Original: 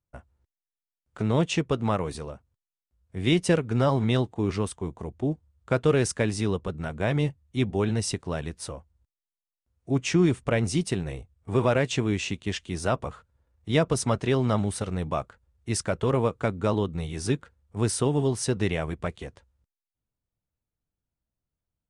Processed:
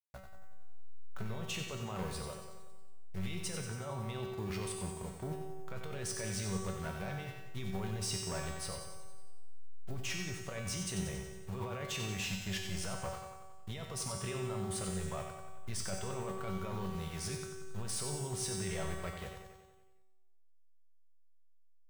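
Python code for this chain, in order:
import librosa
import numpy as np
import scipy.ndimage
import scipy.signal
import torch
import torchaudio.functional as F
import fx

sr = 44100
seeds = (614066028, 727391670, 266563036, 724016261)

p1 = fx.delta_hold(x, sr, step_db=-44.5)
p2 = fx.peak_eq(p1, sr, hz=300.0, db=-11.5, octaves=0.9)
p3 = fx.over_compress(p2, sr, threshold_db=-31.0, ratio=-1.0)
p4 = np.clip(10.0 ** (27.0 / 20.0) * p3, -1.0, 1.0) / 10.0 ** (27.0 / 20.0)
p5 = fx.comb_fb(p4, sr, f0_hz=190.0, decay_s=1.2, harmonics='all', damping=0.0, mix_pct=90)
p6 = p5 + fx.echo_feedback(p5, sr, ms=92, feedback_pct=59, wet_db=-7.5, dry=0)
y = p6 * 10.0 ** (9.5 / 20.0)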